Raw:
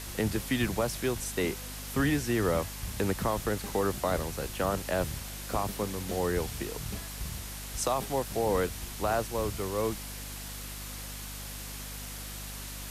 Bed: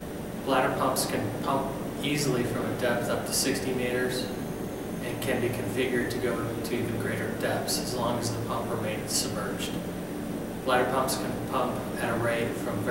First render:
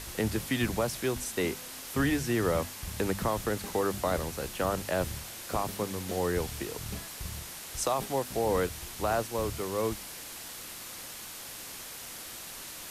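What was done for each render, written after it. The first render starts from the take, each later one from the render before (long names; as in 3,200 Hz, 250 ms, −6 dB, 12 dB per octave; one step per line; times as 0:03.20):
hum removal 50 Hz, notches 5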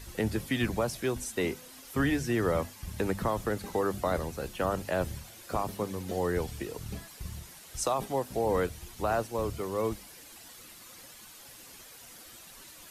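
broadband denoise 10 dB, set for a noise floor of −43 dBFS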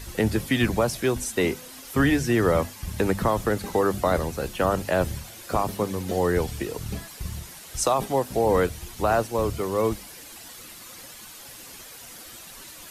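level +7 dB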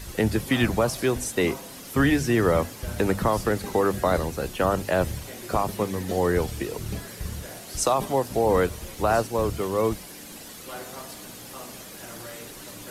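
mix in bed −14.5 dB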